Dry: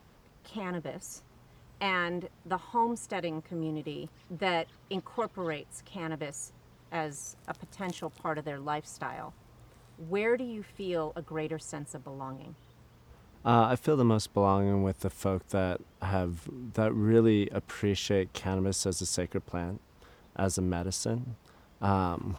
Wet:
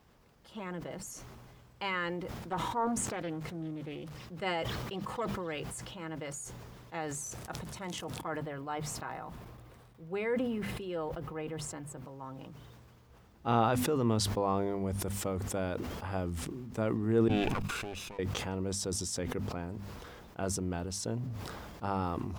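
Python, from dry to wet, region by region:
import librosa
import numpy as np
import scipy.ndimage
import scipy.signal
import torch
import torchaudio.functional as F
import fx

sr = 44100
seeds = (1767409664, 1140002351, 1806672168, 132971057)

y = fx.chain(x, sr, fx.high_shelf(hz=4900.0, db=-5.0),
    fx.sample_gate(floor_db=-57.5),
    fx.doppler_dist(depth_ms=0.33), at=(2.51, 4.17))
y = fx.chain(y, sr, fx.peak_eq(hz=6900.0, db=-6.0, octaves=1.4),
    fx.gate_hold(open_db=-47.0, close_db=-53.0, hold_ms=71.0, range_db=-21, attack_ms=1.4, release_ms=100.0), at=(8.21, 12.05))
y = fx.chain(y, sr, fx.lower_of_two(delay_ms=0.79),
    fx.peak_eq(hz=2700.0, db=5.0, octaves=0.26),
    fx.level_steps(step_db=24), at=(17.28, 18.19))
y = fx.hum_notches(y, sr, base_hz=50, count=5)
y = fx.sustainer(y, sr, db_per_s=23.0)
y = F.gain(torch.from_numpy(y), -5.0).numpy()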